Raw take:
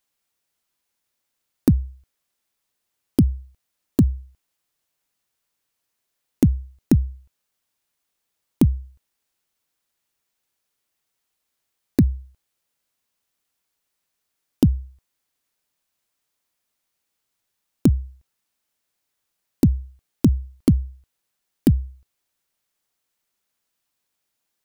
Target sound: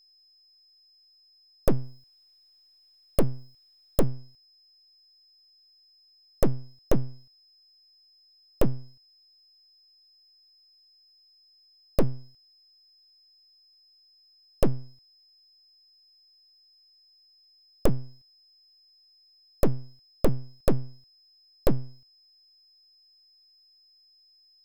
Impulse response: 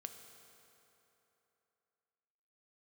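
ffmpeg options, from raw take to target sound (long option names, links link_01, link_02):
-filter_complex "[0:a]asettb=1/sr,asplit=3[link_01][link_02][link_03];[link_01]atrim=end=1.684[link_04];[link_02]atrim=start=1.68:end=4.04,asetpts=PTS-STARTPTS,afade=type=in:duration=0.004:curve=qsin,afade=type=out:start_time=2.356:duration=0.004:curve=qsin,highshelf=frequency=8300:gain=7[link_05];[link_03]atrim=start=4.036[link_06];[link_04][link_05]acrossfade=duration=0.004:curve1=hsin:curve2=qsin[link_07];[link_07][link_06]acrossfade=duration=0.004:curve1=qsin:curve2=hsin,aeval=exprs='abs(val(0))':channel_layout=same,aeval=exprs='val(0)+0.00178*sin(2*PI*5100*n/s)':channel_layout=same,volume=-3dB"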